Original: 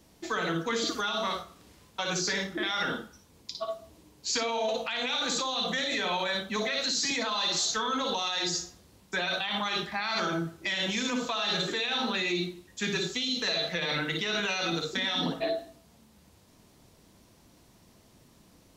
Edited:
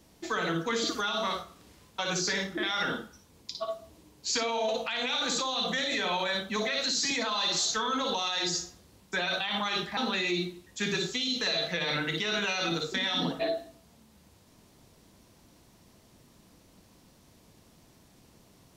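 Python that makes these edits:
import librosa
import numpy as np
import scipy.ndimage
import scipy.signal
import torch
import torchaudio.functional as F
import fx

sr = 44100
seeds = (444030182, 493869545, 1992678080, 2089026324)

y = fx.edit(x, sr, fx.cut(start_s=9.97, length_s=2.01), tone=tone)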